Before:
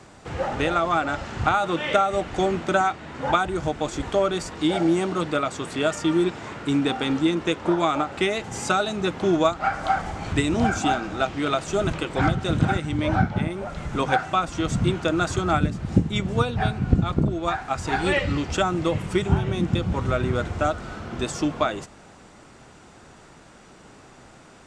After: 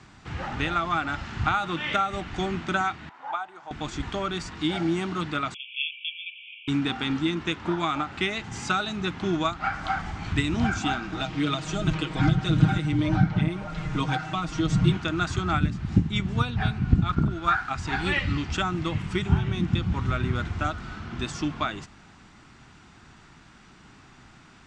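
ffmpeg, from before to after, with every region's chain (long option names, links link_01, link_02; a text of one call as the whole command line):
ffmpeg -i in.wav -filter_complex "[0:a]asettb=1/sr,asplit=3[link_01][link_02][link_03];[link_01]atrim=end=3.094[link_04];[link_02]atrim=start=3.09:end=3.71,asetpts=PTS-STARTPTS,afade=type=in:duration=0.004:curve=qsin,afade=type=out:start_time=0.616:duration=0.004:curve=qsin,bandpass=frequency=800:width_type=q:width=2.4,aemphasis=mode=production:type=riaa[link_05];[link_03]atrim=start=3.706[link_06];[link_04][link_05]acrossfade=duration=0.004:curve1=hsin:curve2=qsin[link_07];[link_07][link_06]acrossfade=duration=0.004:curve1=qsin:curve2=hsin,asettb=1/sr,asplit=3[link_08][link_09][link_10];[link_08]atrim=end=5.544[link_11];[link_09]atrim=start=5.54:end=6.68,asetpts=PTS-STARTPTS,afade=type=in:duration=0.004:curve=qsin,afade=type=out:start_time=1.136:duration=0.004:curve=qsin,asuperpass=centerf=2800:order=20:qfactor=2.4,acontrast=56[link_12];[link_10]atrim=start=6.676[link_13];[link_11][link_12]acrossfade=duration=0.004:curve1=hsin:curve2=qsin[link_14];[link_14][link_13]acrossfade=duration=0.004:curve1=qsin:curve2=hsin,asettb=1/sr,asplit=3[link_15][link_16][link_17];[link_15]atrim=end=11.124[link_18];[link_16]atrim=start=11.12:end=14.97,asetpts=PTS-STARTPTS,afade=type=in:duration=0.004:curve=qsin,afade=type=out:start_time=3.846:duration=0.004:curve=qsin,equalizer=frequency=520:width=1.3:gain=6.5,aecho=1:1:6.4:0.81,atrim=end_sample=169785,acrossover=split=350|3000[link_19][link_20][link_21];[link_20]acompressor=threshold=-28dB:ratio=2:attack=3.2:release=140:knee=2.83:detection=peak[link_22];[link_19][link_22][link_21]amix=inputs=3:normalize=0[link_23];[link_17]atrim=start=14.966[link_24];[link_18][link_23]acrossfade=duration=0.004:curve1=hsin:curve2=qsin[link_25];[link_25][link_24]acrossfade=duration=0.004:curve1=qsin:curve2=hsin,asettb=1/sr,asplit=3[link_26][link_27][link_28];[link_26]atrim=end=17.094[link_29];[link_27]atrim=start=17.09:end=17.7,asetpts=PTS-STARTPTS,afade=type=in:duration=0.004:curve=qsin,afade=type=out:start_time=0.606:duration=0.004:curve=qsin,equalizer=frequency=1400:width=3.6:gain=13,aeval=exprs='sgn(val(0))*max(abs(val(0))-0.00501,0)':channel_layout=same[link_30];[link_28]atrim=start=17.696[link_31];[link_29][link_30]acrossfade=duration=0.004:curve1=hsin:curve2=qsin[link_32];[link_32][link_31]acrossfade=duration=0.004:curve1=qsin:curve2=hsin,lowpass=5300,equalizer=frequency=530:width=1.4:gain=-15" out.wav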